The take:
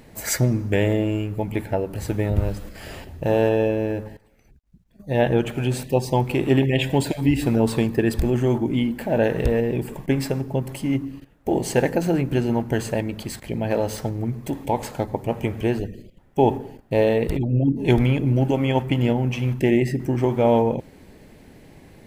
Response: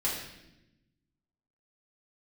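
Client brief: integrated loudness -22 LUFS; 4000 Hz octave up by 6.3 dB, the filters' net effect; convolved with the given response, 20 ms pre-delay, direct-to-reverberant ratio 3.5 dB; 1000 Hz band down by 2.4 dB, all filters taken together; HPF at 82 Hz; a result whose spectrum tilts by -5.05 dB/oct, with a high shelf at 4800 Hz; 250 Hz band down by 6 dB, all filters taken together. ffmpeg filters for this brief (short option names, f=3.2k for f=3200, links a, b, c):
-filter_complex "[0:a]highpass=82,equalizer=f=250:t=o:g=-7.5,equalizer=f=1k:t=o:g=-3,equalizer=f=4k:t=o:g=6.5,highshelf=f=4.8k:g=5,asplit=2[a][b];[1:a]atrim=start_sample=2205,adelay=20[c];[b][c]afir=irnorm=-1:irlink=0,volume=-10.5dB[d];[a][d]amix=inputs=2:normalize=0,volume=1dB"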